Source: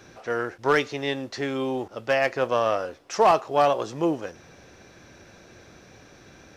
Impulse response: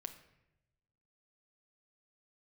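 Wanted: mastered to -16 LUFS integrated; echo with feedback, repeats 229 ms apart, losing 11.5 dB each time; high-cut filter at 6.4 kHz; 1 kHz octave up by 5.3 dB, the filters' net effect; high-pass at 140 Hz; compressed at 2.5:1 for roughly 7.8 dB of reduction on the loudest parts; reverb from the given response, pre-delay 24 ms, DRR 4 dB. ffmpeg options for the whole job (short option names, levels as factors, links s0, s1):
-filter_complex "[0:a]highpass=140,lowpass=6400,equalizer=f=1000:t=o:g=7,acompressor=threshold=0.0891:ratio=2.5,aecho=1:1:229|458|687:0.266|0.0718|0.0194,asplit=2[s0][s1];[1:a]atrim=start_sample=2205,adelay=24[s2];[s1][s2]afir=irnorm=-1:irlink=0,volume=0.944[s3];[s0][s3]amix=inputs=2:normalize=0,volume=2.66"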